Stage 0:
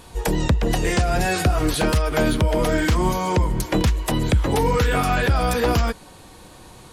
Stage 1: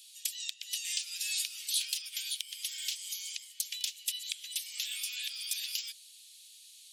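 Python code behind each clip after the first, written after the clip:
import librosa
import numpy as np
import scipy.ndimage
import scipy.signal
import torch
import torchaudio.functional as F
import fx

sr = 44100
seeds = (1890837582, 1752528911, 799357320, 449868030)

y = scipy.signal.sosfilt(scipy.signal.butter(6, 2900.0, 'highpass', fs=sr, output='sos'), x)
y = y * 10.0 ** (-2.5 / 20.0)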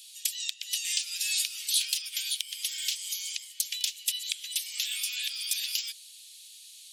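y = fx.quant_float(x, sr, bits=6)
y = y * 10.0 ** (5.0 / 20.0)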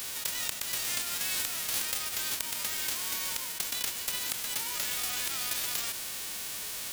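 y = fx.envelope_flatten(x, sr, power=0.1)
y = fx.env_flatten(y, sr, amount_pct=70)
y = y * 10.0 ** (-6.5 / 20.0)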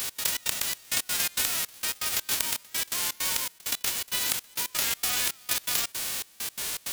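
y = fx.step_gate(x, sr, bpm=164, pattern='x.xx.xxx..', floor_db=-24.0, edge_ms=4.5)
y = fx.record_warp(y, sr, rpm=33.33, depth_cents=100.0)
y = y * 10.0 ** (6.0 / 20.0)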